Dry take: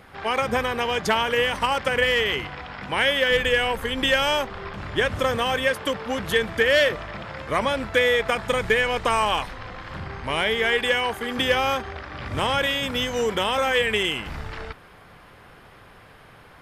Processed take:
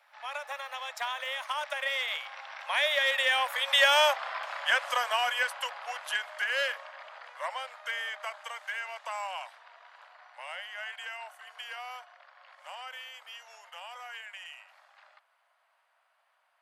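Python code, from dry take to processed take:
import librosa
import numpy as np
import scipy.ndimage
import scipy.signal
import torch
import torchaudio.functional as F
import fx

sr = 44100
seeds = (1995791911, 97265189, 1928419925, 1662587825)

p1 = fx.doppler_pass(x, sr, speed_mps=28, closest_m=21.0, pass_at_s=4.18)
p2 = scipy.signal.sosfilt(scipy.signal.butter(12, 580.0, 'highpass', fs=sr, output='sos'), p1)
p3 = 10.0 ** (-28.0 / 20.0) * np.tanh(p2 / 10.0 ** (-28.0 / 20.0))
y = p2 + (p3 * 10.0 ** (-12.0 / 20.0))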